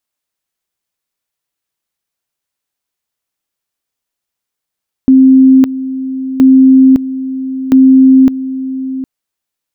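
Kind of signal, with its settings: two-level tone 263 Hz -1.5 dBFS, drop 14 dB, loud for 0.56 s, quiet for 0.76 s, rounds 3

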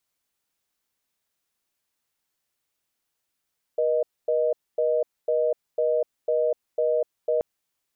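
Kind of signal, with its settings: call progress tone reorder tone, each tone -22.5 dBFS 3.63 s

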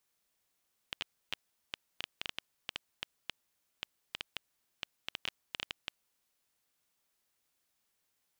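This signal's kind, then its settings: random clicks 6 per s -18 dBFS 5.16 s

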